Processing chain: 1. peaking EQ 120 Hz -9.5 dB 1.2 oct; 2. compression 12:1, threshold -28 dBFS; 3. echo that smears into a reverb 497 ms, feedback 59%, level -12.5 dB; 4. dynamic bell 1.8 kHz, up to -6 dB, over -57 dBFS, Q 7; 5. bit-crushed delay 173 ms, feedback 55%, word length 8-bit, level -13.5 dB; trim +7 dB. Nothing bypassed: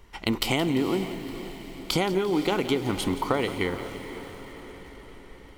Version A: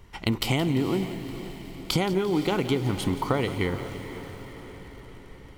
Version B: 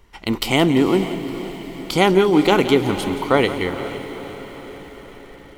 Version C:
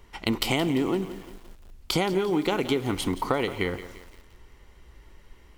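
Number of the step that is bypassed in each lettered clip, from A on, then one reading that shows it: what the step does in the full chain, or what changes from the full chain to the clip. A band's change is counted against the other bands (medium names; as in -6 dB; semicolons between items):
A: 1, 125 Hz band +6.5 dB; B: 2, mean gain reduction 4.5 dB; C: 3, momentary loudness spread change -8 LU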